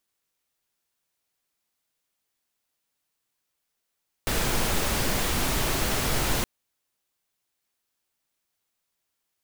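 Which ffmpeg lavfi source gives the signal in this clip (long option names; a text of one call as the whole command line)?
ffmpeg -f lavfi -i "anoisesrc=color=pink:amplitude=0.288:duration=2.17:sample_rate=44100:seed=1" out.wav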